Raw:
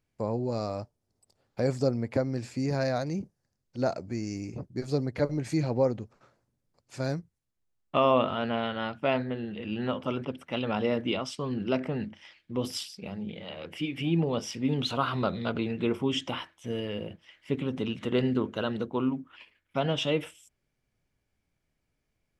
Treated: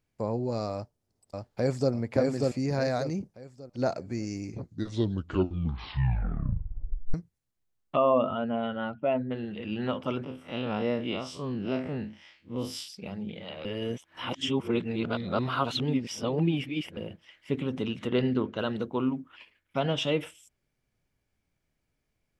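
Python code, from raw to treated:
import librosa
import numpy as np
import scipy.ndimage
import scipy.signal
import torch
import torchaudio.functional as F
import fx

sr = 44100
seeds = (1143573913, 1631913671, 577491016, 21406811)

y = fx.echo_throw(x, sr, start_s=0.74, length_s=1.18, ms=590, feedback_pct=35, wet_db=-1.5)
y = fx.spec_expand(y, sr, power=1.6, at=(7.95, 9.3), fade=0.02)
y = fx.spec_blur(y, sr, span_ms=84.0, at=(10.23, 12.88))
y = fx.lowpass(y, sr, hz=5800.0, slope=24, at=(18.07, 18.57), fade=0.02)
y = fx.edit(y, sr, fx.tape_stop(start_s=4.43, length_s=2.71),
    fx.reverse_span(start_s=13.65, length_s=3.32), tone=tone)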